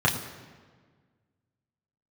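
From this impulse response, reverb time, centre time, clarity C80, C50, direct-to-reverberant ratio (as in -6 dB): 1.6 s, 31 ms, 10.0 dB, 9.0 dB, -4.0 dB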